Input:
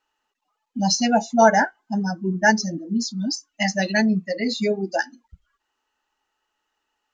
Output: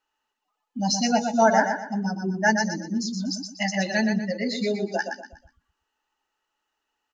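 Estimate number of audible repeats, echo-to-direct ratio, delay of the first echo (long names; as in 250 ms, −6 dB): 4, −5.5 dB, 121 ms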